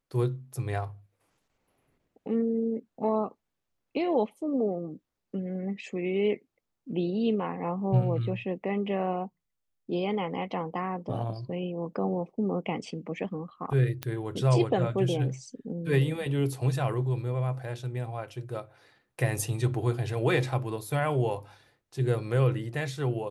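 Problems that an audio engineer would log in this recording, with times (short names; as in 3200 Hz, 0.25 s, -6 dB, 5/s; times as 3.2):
14.03 pop -16 dBFS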